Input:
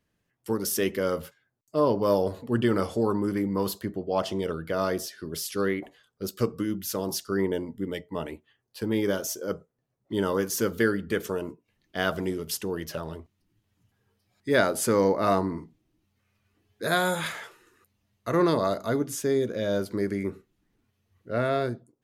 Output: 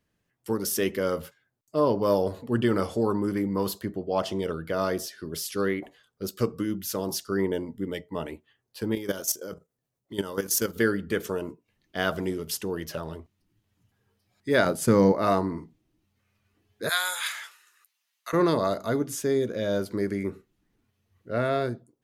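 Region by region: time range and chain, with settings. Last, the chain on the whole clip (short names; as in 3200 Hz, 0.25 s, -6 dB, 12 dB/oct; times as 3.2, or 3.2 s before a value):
8.95–10.76 high shelf 3700 Hz +9.5 dB + level quantiser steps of 12 dB
14.65–15.12 bell 150 Hz +12 dB 1.2 oct + expander -25 dBFS + mismatched tape noise reduction encoder only
16.89–18.33 Chebyshev high-pass 1100 Hz + tilt shelf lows -6.5 dB, about 1500 Hz
whole clip: dry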